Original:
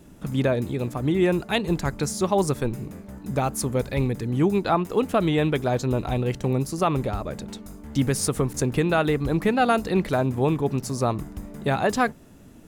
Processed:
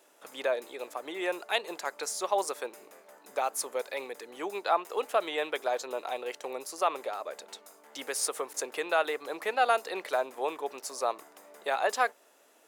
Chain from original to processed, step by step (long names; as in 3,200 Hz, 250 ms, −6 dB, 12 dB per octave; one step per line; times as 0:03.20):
high-pass filter 500 Hz 24 dB per octave
level −3.5 dB